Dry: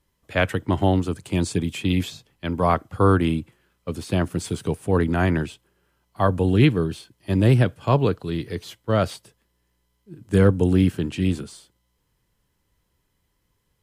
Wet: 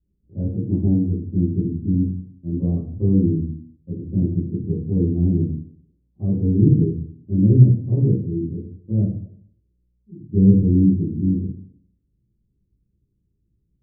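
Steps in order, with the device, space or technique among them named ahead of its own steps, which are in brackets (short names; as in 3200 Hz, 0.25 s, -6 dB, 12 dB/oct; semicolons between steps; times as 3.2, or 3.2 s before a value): next room (LPF 300 Hz 24 dB/oct; reverb RT60 0.55 s, pre-delay 3 ms, DRR -9.5 dB); gain -6 dB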